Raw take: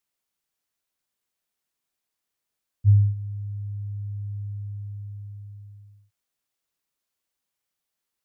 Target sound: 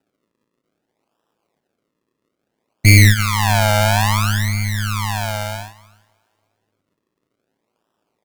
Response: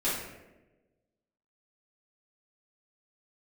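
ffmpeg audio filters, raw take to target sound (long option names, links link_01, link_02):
-filter_complex "[0:a]acrusher=samples=40:mix=1:aa=0.000001:lfo=1:lforange=40:lforate=0.6,aecho=1:1:310|620|930:0.126|0.0516|0.0212,agate=range=-13dB:threshold=-44dB:ratio=16:detection=peak,highpass=190,asplit=2[link_01][link_02];[1:a]atrim=start_sample=2205[link_03];[link_02][link_03]afir=irnorm=-1:irlink=0,volume=-31.5dB[link_04];[link_01][link_04]amix=inputs=2:normalize=0,apsyclip=30dB,tremolo=f=110:d=0.667,aeval=exprs='1.06*(cos(1*acos(clip(val(0)/1.06,-1,1)))-cos(1*PI/2))+0.0668*(cos(5*acos(clip(val(0)/1.06,-1,1)))-cos(5*PI/2))+0.075*(cos(7*acos(clip(val(0)/1.06,-1,1)))-cos(7*PI/2))':channel_layout=same,volume=-1dB"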